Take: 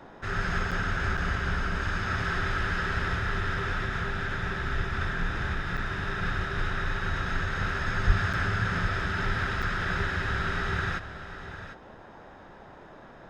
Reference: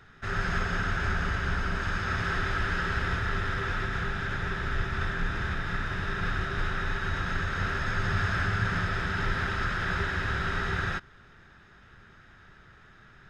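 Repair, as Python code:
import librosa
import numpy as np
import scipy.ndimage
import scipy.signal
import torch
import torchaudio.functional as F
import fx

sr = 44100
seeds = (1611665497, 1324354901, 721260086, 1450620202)

y = fx.highpass(x, sr, hz=140.0, slope=24, at=(8.06, 8.18), fade=0.02)
y = fx.fix_interpolate(y, sr, at_s=(0.71, 1.17, 5.77, 8.33, 9.62), length_ms=6.5)
y = fx.noise_reduce(y, sr, print_start_s=12.73, print_end_s=13.23, reduce_db=6.0)
y = fx.fix_echo_inverse(y, sr, delay_ms=750, level_db=-12.0)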